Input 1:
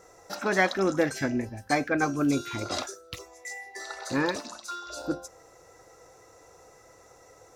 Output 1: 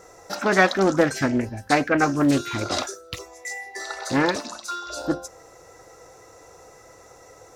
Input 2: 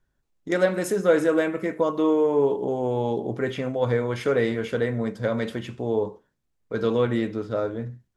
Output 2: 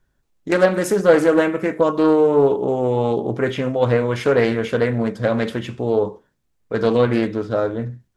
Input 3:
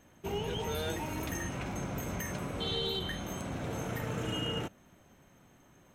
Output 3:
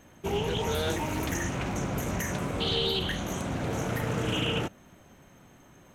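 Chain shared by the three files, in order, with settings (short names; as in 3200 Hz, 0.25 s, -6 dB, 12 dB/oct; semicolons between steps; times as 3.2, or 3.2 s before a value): Doppler distortion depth 0.27 ms; gain +6 dB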